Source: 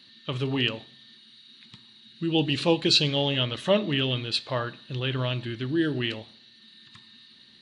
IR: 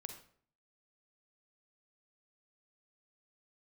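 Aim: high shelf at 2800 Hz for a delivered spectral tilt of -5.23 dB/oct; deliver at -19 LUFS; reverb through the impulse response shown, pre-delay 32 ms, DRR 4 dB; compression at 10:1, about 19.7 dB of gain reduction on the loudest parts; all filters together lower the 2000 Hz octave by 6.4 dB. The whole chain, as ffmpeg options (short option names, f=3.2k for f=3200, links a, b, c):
-filter_complex "[0:a]equalizer=f=2k:t=o:g=-5.5,highshelf=f=2.8k:g=-6.5,acompressor=threshold=-38dB:ratio=10,asplit=2[a][b];[1:a]atrim=start_sample=2205,adelay=32[c];[b][c]afir=irnorm=-1:irlink=0,volume=0dB[d];[a][d]amix=inputs=2:normalize=0,volume=21.5dB"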